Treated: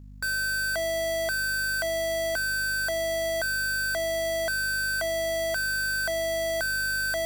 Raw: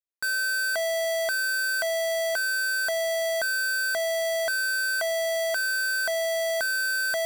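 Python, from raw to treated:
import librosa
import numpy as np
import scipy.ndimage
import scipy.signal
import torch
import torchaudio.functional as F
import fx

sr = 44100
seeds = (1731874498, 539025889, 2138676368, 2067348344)

y = fx.octave_divider(x, sr, octaves=1, level_db=-5.0)
y = fx.add_hum(y, sr, base_hz=50, snr_db=17)
y = fx.quant_companded(y, sr, bits=8)
y = y * librosa.db_to_amplitude(-1.5)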